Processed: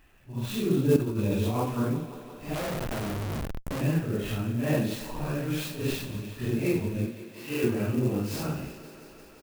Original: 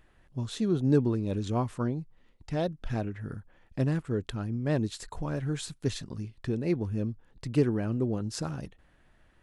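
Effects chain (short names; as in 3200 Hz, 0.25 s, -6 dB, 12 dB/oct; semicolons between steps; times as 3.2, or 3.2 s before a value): phase scrambler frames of 0.2 s; 7.07–7.64 weighting filter A; thinning echo 0.174 s, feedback 83%, high-pass 160 Hz, level -14.5 dB; 0.96–1.57 negative-ratio compressor -30 dBFS, ratio -1; bell 2600 Hz +10.5 dB 0.36 oct; doubler 30 ms -11 dB; 2.54–3.81 Schmitt trigger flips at -41 dBFS; clock jitter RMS 0.031 ms; gain +2 dB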